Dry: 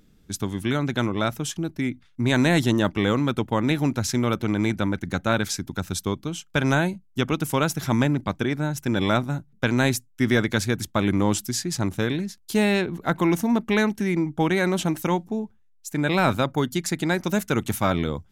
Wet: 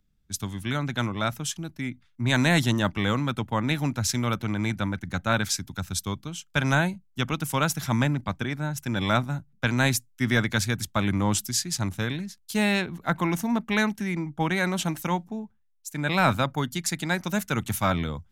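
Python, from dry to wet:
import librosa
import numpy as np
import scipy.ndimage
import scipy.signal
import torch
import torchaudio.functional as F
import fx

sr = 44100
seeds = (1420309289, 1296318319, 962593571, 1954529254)

y = fx.peak_eq(x, sr, hz=380.0, db=-8.5, octaves=1.2)
y = fx.band_widen(y, sr, depth_pct=40)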